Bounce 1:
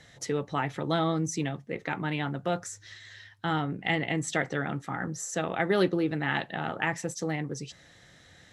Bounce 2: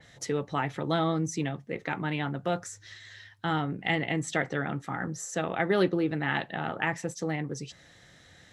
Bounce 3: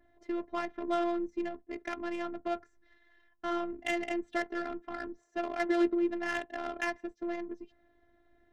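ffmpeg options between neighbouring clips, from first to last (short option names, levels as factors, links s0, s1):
-af "adynamicequalizer=threshold=0.00501:dfrequency=4100:dqfactor=0.7:tfrequency=4100:tqfactor=0.7:attack=5:release=100:ratio=0.375:range=2.5:mode=cutabove:tftype=highshelf"
-af "adynamicsmooth=sensitivity=2:basefreq=860,afftfilt=real='hypot(re,im)*cos(PI*b)':imag='0':win_size=512:overlap=0.75"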